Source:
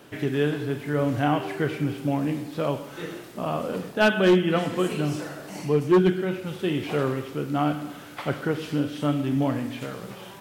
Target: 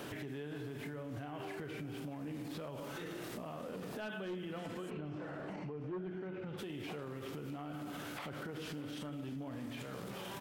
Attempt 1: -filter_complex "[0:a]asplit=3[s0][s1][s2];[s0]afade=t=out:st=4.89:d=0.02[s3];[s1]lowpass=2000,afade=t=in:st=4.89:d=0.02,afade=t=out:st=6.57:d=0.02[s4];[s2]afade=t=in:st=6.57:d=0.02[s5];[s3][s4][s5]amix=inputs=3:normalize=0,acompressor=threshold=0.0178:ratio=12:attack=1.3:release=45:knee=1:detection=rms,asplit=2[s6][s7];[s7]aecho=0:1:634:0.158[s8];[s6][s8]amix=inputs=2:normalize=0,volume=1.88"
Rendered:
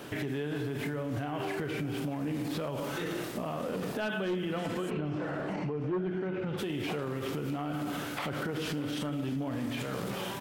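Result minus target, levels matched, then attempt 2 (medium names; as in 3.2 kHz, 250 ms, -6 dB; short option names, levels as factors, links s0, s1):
compression: peak gain reduction -9.5 dB
-filter_complex "[0:a]asplit=3[s0][s1][s2];[s0]afade=t=out:st=4.89:d=0.02[s3];[s1]lowpass=2000,afade=t=in:st=4.89:d=0.02,afade=t=out:st=6.57:d=0.02[s4];[s2]afade=t=in:st=6.57:d=0.02[s5];[s3][s4][s5]amix=inputs=3:normalize=0,acompressor=threshold=0.00531:ratio=12:attack=1.3:release=45:knee=1:detection=rms,asplit=2[s6][s7];[s7]aecho=0:1:634:0.158[s8];[s6][s8]amix=inputs=2:normalize=0,volume=1.88"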